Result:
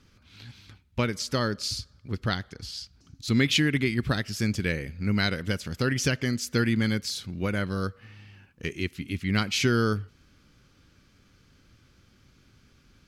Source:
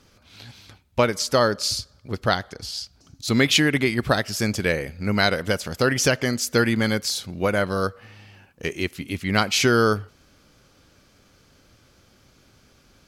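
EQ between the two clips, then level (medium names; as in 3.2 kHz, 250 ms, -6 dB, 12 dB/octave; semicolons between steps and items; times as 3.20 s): peaking EQ 650 Hz -11.5 dB 1.5 oct; treble shelf 4.3 kHz -10.5 dB; dynamic bell 1.1 kHz, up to -4 dB, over -42 dBFS, Q 0.93; 0.0 dB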